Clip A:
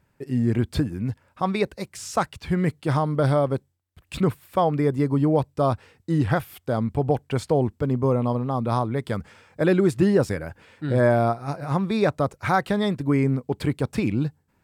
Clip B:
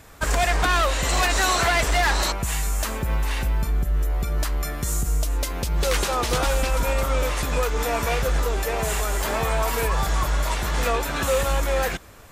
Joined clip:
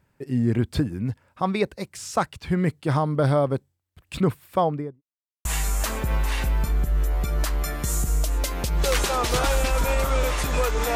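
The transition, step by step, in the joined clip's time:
clip A
4.55–5.02 s: studio fade out
5.02–5.45 s: mute
5.45 s: go over to clip B from 2.44 s

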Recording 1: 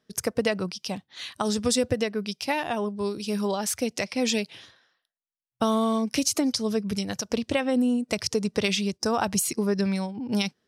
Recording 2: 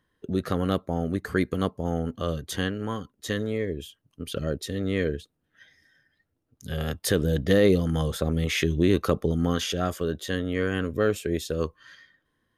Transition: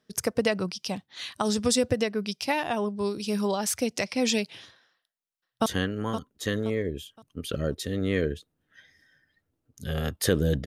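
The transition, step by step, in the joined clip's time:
recording 1
4.90–5.66 s: echo throw 520 ms, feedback 35%, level -9.5 dB
5.66 s: go over to recording 2 from 2.49 s

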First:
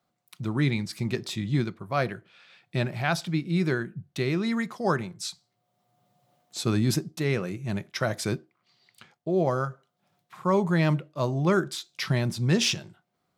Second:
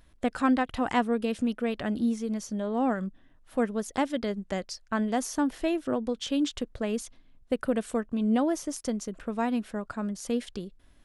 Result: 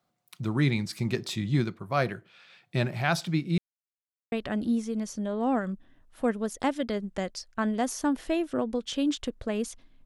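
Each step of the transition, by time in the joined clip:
first
3.58–4.32 s: mute
4.32 s: go over to second from 1.66 s

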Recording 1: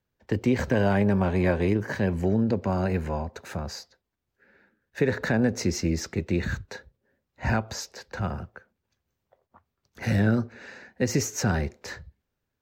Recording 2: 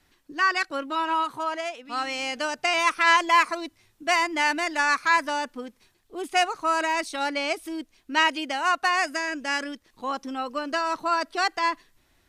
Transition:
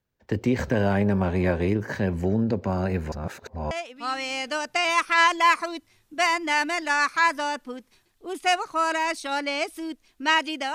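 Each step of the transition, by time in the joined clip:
recording 1
3.12–3.71 s: reverse
3.71 s: go over to recording 2 from 1.60 s

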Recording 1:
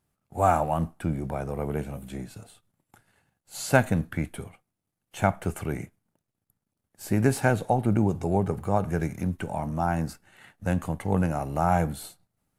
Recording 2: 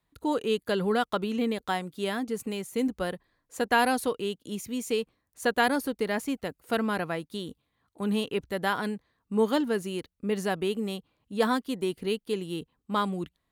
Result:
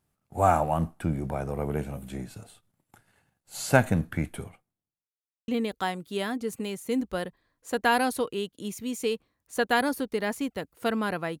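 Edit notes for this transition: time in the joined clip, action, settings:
recording 1
4.42–5.13 s: studio fade out
5.13–5.48 s: mute
5.48 s: go over to recording 2 from 1.35 s

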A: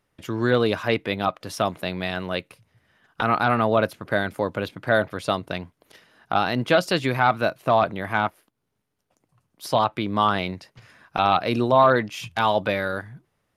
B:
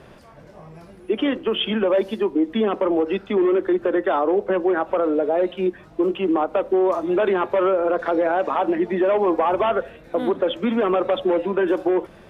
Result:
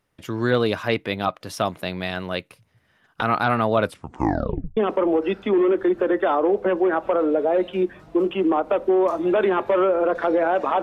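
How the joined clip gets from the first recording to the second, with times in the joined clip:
A
3.80 s: tape stop 0.97 s
4.77 s: go over to B from 2.61 s

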